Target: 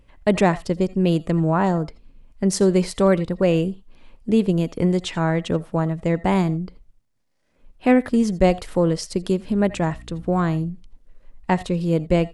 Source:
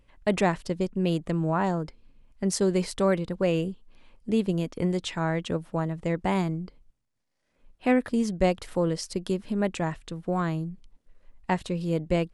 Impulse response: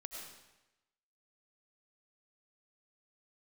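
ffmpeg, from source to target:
-filter_complex "[0:a]asplit=2[s0][s1];[s1]tiltshelf=f=970:g=3.5[s2];[1:a]atrim=start_sample=2205,atrim=end_sample=3969[s3];[s2][s3]afir=irnorm=-1:irlink=0,volume=1.68[s4];[s0][s4]amix=inputs=2:normalize=0,asettb=1/sr,asplit=3[s5][s6][s7];[s5]atrim=end=9.484[s8];[s6]atrim=start=9.48:end=10.71,asetpts=PTS-STARTPTS,afade=t=in:d=0.004:c=qsin,afade=t=out:st=1.226:d=0.004:c=qsin,aeval=exprs='val(0)+0.00891*(sin(2*PI*60*n/s)+sin(2*PI*2*60*n/s)/2+sin(2*PI*3*60*n/s)/3+sin(2*PI*4*60*n/s)/4+sin(2*PI*5*60*n/s)/5)':c=same[s9];[s7]atrim=start=10.706[s10];[s8][s9]acrossfade=d=0.004:c1=hsin:c2=qsin[s11];[s11][s10]acrossfade=d=0.004:c1=qsin:c2=hsin"

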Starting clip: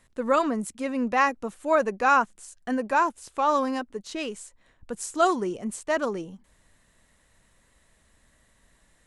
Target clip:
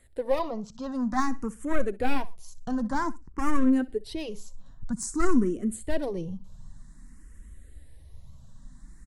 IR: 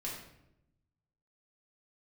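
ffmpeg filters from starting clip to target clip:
-filter_complex "[0:a]asettb=1/sr,asplit=3[s0][s1][s2];[s0]atrim=end=0.394[s3];[s1]atrim=start=0.39:end=0.92,asetpts=PTS-STARTPTS,afade=t=in:d=0.004:c=qsin,afade=t=out:st=0.526:d=0.004:c=qsin,lowpass=f=5700:w=0.5412,lowpass=f=5700:w=1.3066[s4];[s2]atrim=start=0.916[s5];[s3][s4]acrossfade=d=0.004:c1=hsin:c2=qsin[s6];[s6][s5]acrossfade=d=0.004:c1=qsin:c2=hsin,aeval=exprs='clip(val(0),-1,0.0562)':c=same,asplit=2[s7][s8];[s8]aecho=0:1:63|126:0.1|0.027[s9];[s7][s9]amix=inputs=2:normalize=0,asplit=3[s10][s11][s12];[s10]afade=t=out:st=3.16:d=0.02[s13];[s11]adynamicsmooth=sensitivity=6:basefreq=640,afade=t=in:st=3.16:d=0.02,afade=t=out:st=3.71:d=0.02[s14];[s12]afade=t=in:st=3.71:d=0.02[s15];[s13][s14][s15]amix=inputs=3:normalize=0,asubboost=boost=6.5:cutoff=230,asplit=2[s16][s17];[s17]acompressor=threshold=0.02:ratio=6,volume=1[s18];[s16][s18]amix=inputs=2:normalize=0,flanger=delay=0.9:depth=3.1:regen=55:speed=1.2:shape=sinusoidal,equalizer=f=2600:w=1.3:g=-8.5,asplit=2[s19][s20];[s20]afreqshift=0.52[s21];[s19][s21]amix=inputs=2:normalize=1,volume=1.41"

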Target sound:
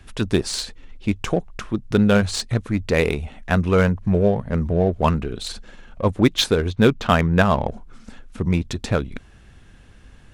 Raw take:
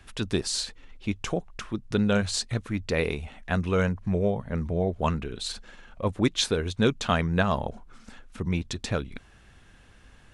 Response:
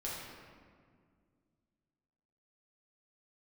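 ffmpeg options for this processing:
-filter_complex "[0:a]asettb=1/sr,asplit=3[s0][s1][s2];[s0]atrim=end=6.704[s3];[s1]atrim=start=6.7:end=7.69,asetpts=PTS-STARTPTS,afade=t=in:d=0.004:c=qsin,afade=t=out:st=0.986:d=0.004:c=qsin,lowpass=4400[s4];[s2]atrim=start=7.686[s5];[s3][s4]acrossfade=d=0.004:c1=hsin:c2=qsin[s6];[s6][s5]acrossfade=d=0.004:c1=qsin:c2=hsin,asplit=2[s7][s8];[s8]adynamicsmooth=sensitivity=5:basefreq=530,volume=0.794[s9];[s7][s9]amix=inputs=2:normalize=0,volume=1.33"

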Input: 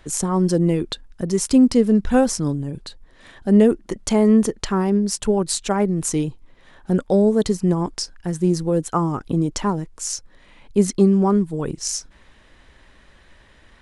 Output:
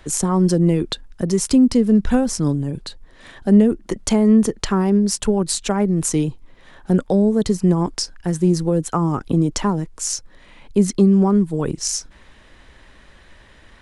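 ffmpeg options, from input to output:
-filter_complex "[0:a]acrossover=split=240[s0][s1];[s1]acompressor=threshold=0.0891:ratio=10[s2];[s0][s2]amix=inputs=2:normalize=0,volume=1.5"

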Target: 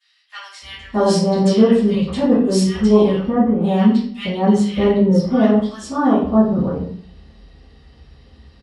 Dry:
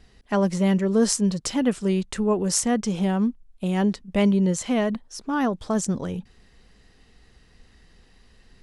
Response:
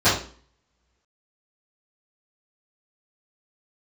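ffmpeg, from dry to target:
-filter_complex "[0:a]acrossover=split=1600[s0][s1];[s0]adelay=620[s2];[s2][s1]amix=inputs=2:normalize=0[s3];[1:a]atrim=start_sample=2205,asetrate=33075,aresample=44100[s4];[s3][s4]afir=irnorm=-1:irlink=0,volume=0.168"

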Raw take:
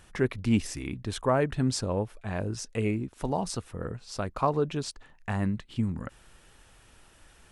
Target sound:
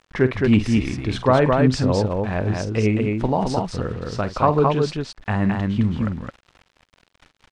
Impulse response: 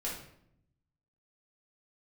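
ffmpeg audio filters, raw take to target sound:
-af "aeval=exprs='val(0)*gte(abs(val(0)),0.00422)':c=same,lowpass=4100,aecho=1:1:46.65|215.7:0.251|0.708,volume=2.51"

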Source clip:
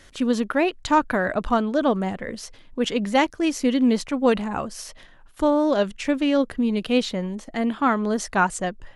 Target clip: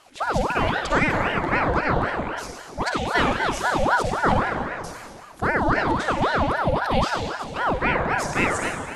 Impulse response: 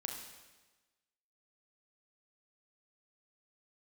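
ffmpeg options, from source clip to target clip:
-filter_complex "[0:a]asettb=1/sr,asplit=3[s0][s1][s2];[s0]atrim=end=4.324[s3];[s1]atrim=start=4.32:end=4.84,asetpts=PTS-STARTPTS,afade=t=in:d=0.004:c=qsin,afade=t=out:st=0.516:d=0.004:c=qsin,lowpass=1700[s4];[s2]atrim=start=4.836[s5];[s3][s4]acrossfade=d=0.004:c1=hsin:c2=qsin[s6];[s6][s5]acrossfade=d=0.004:c1=qsin:c2=hsin[s7];[1:a]atrim=start_sample=2205,asetrate=28224,aresample=44100[s8];[s7][s8]afir=irnorm=-1:irlink=0,aeval=exprs='val(0)*sin(2*PI*750*n/s+750*0.65/3.8*sin(2*PI*3.8*n/s))':c=same"

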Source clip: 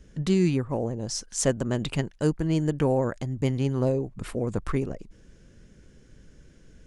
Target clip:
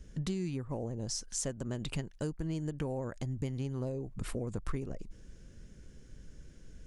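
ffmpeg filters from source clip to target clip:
-af "bass=f=250:g=1,treble=f=4000:g=4,acompressor=threshold=0.0316:ratio=5,lowshelf=f=77:g=6.5,volume=0.631"

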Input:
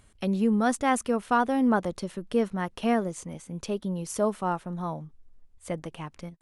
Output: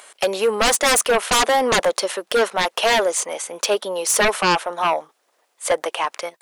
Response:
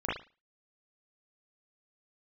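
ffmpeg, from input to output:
-af "highpass=f=520:w=0.5412,highpass=f=520:w=1.3066,aeval=exprs='0.282*sin(PI/2*7.94*val(0)/0.282)':c=same,volume=0.841"

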